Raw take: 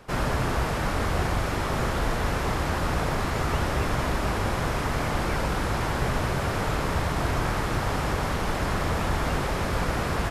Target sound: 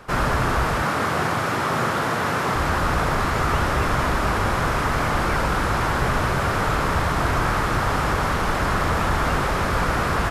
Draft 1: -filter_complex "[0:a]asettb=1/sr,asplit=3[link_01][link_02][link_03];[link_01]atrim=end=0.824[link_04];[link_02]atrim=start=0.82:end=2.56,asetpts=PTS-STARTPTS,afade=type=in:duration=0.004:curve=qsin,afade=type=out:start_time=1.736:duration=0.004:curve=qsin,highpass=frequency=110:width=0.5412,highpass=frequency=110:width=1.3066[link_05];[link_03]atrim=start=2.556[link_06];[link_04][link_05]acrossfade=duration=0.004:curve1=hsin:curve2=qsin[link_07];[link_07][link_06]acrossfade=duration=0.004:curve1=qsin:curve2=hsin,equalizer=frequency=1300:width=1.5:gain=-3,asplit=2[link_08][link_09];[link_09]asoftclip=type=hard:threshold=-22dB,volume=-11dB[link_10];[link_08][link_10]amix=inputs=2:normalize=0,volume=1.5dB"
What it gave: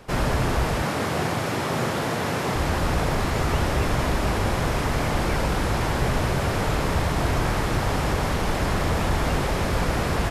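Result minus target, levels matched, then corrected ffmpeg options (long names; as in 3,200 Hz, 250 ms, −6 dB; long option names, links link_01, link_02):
1,000 Hz band −3.0 dB
-filter_complex "[0:a]asettb=1/sr,asplit=3[link_01][link_02][link_03];[link_01]atrim=end=0.824[link_04];[link_02]atrim=start=0.82:end=2.56,asetpts=PTS-STARTPTS,afade=type=in:duration=0.004:curve=qsin,afade=type=out:start_time=1.736:duration=0.004:curve=qsin,highpass=frequency=110:width=0.5412,highpass=frequency=110:width=1.3066[link_05];[link_03]atrim=start=2.556[link_06];[link_04][link_05]acrossfade=duration=0.004:curve1=hsin:curve2=qsin[link_07];[link_07][link_06]acrossfade=duration=0.004:curve1=qsin:curve2=hsin,equalizer=frequency=1300:width=1.5:gain=6,asplit=2[link_08][link_09];[link_09]asoftclip=type=hard:threshold=-22dB,volume=-11dB[link_10];[link_08][link_10]amix=inputs=2:normalize=0,volume=1.5dB"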